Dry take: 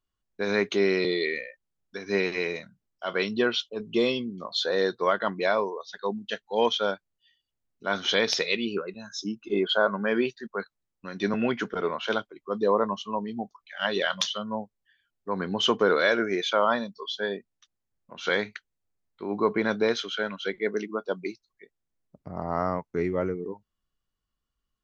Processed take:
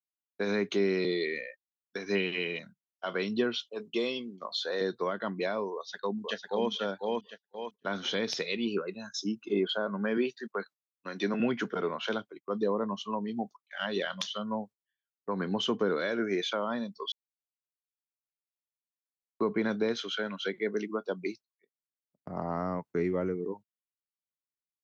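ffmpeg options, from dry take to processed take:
ffmpeg -i in.wav -filter_complex "[0:a]asettb=1/sr,asplit=3[link_01][link_02][link_03];[link_01]atrim=end=2.154[link_04];[link_02]atrim=start=2.15:end=2.59,asetpts=PTS-STARTPTS,afade=type=in:duration=0.004:curve=qsin,afade=type=out:start_time=0.436:duration=0.004:curve=qsin,lowpass=frequency=3000:width_type=q:width=15[link_05];[link_03]atrim=start=2.586[link_06];[link_04][link_05]acrossfade=duration=0.004:curve1=hsin:curve2=qsin[link_07];[link_07][link_06]acrossfade=duration=0.004:curve1=qsin:curve2=hsin,asettb=1/sr,asplit=3[link_08][link_09][link_10];[link_08]atrim=end=3.654[link_11];[link_09]atrim=start=3.65:end=4.81,asetpts=PTS-STARTPTS,afade=type=in:duration=0.004:curve=qsin,afade=type=out:start_time=1.156:duration=0.004:curve=qsin,highpass=frequency=490:poles=1[link_12];[link_10]atrim=start=4.806[link_13];[link_11][link_12]acrossfade=duration=0.004:curve1=hsin:curve2=qsin[link_14];[link_14][link_13]acrossfade=duration=0.004:curve1=qsin:curve2=hsin,asplit=2[link_15][link_16];[link_16]afade=type=in:start_time=5.74:duration=0.01,afade=type=out:start_time=6.7:duration=0.01,aecho=0:1:500|1000|1500|2000:0.668344|0.167086|0.0417715|0.0104429[link_17];[link_15][link_17]amix=inputs=2:normalize=0,asettb=1/sr,asplit=3[link_18][link_19][link_20];[link_18]atrim=end=10.174[link_21];[link_19]atrim=start=10.17:end=11.4,asetpts=PTS-STARTPTS,afade=type=in:duration=0.004:curve=qsin,afade=type=out:start_time=1.226:duration=0.004:curve=qsin,highpass=210[link_22];[link_20]atrim=start=11.396[link_23];[link_21][link_22]acrossfade=duration=0.004:curve1=hsin:curve2=qsin[link_24];[link_24][link_23]acrossfade=duration=0.004:curve1=qsin:curve2=hsin,asplit=3[link_25][link_26][link_27];[link_25]atrim=end=17.12,asetpts=PTS-STARTPTS,afade=type=out:start_time=17.116:duration=0.004:curve=hsin[link_28];[link_26]atrim=start=17.12:end=19.4,asetpts=PTS-STARTPTS,volume=0[link_29];[link_27]atrim=start=19.4,asetpts=PTS-STARTPTS,afade=type=in:duration=0.004:curve=hsin[link_30];[link_28][link_29][link_30]concat=n=3:v=0:a=1,agate=range=-23dB:threshold=-44dB:ratio=16:detection=peak,highpass=130,acrossover=split=330[link_31][link_32];[link_32]acompressor=threshold=-31dB:ratio=6[link_33];[link_31][link_33]amix=inputs=2:normalize=0" out.wav

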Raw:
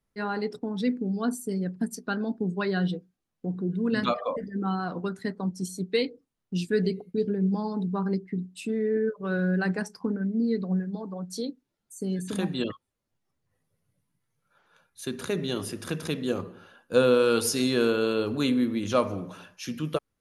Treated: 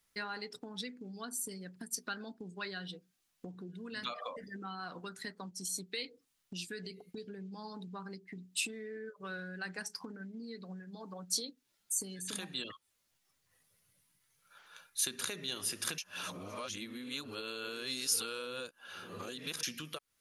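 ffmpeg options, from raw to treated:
ffmpeg -i in.wav -filter_complex "[0:a]asplit=3[link_01][link_02][link_03];[link_01]atrim=end=15.982[link_04];[link_02]atrim=start=15.978:end=19.632,asetpts=PTS-STARTPTS,areverse[link_05];[link_03]atrim=start=19.628[link_06];[link_04][link_05]acrossfade=duration=0.004:curve1=hsin:curve2=hsin[link_07];[link_07][link_06]acrossfade=duration=0.004:curve1=hsin:curve2=hsin,alimiter=limit=-18.5dB:level=0:latency=1:release=99,acompressor=threshold=-40dB:ratio=6,tiltshelf=frequency=1100:gain=-9.5,volume=3.5dB" out.wav

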